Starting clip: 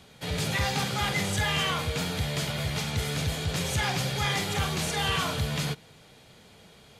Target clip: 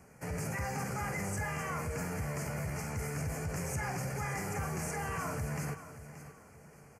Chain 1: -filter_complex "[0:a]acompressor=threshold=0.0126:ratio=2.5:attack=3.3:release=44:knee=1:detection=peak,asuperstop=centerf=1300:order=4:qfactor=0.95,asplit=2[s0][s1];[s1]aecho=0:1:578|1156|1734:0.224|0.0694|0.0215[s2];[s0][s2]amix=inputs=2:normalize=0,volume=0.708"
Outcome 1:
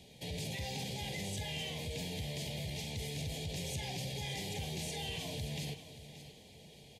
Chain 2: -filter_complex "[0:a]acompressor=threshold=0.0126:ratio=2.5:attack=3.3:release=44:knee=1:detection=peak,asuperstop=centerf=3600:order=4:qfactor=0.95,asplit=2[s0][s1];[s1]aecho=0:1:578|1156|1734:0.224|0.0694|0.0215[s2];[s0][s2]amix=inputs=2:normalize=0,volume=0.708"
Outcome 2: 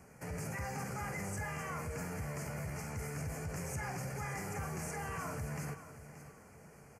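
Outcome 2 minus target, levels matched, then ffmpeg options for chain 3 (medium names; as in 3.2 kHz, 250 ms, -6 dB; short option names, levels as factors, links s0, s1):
compression: peak gain reduction +4 dB
-filter_complex "[0:a]acompressor=threshold=0.0266:ratio=2.5:attack=3.3:release=44:knee=1:detection=peak,asuperstop=centerf=3600:order=4:qfactor=0.95,asplit=2[s0][s1];[s1]aecho=0:1:578|1156|1734:0.224|0.0694|0.0215[s2];[s0][s2]amix=inputs=2:normalize=0,volume=0.708"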